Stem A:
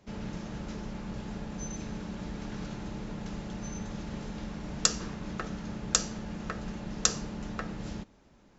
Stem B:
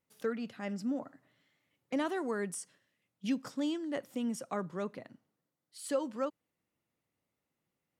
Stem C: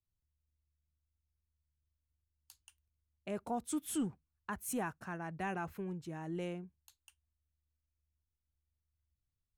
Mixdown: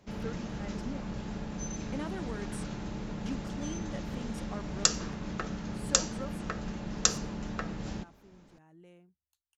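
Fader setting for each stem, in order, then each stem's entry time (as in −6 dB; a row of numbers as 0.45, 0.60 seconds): +0.5, −7.0, −16.5 decibels; 0.00, 0.00, 2.45 seconds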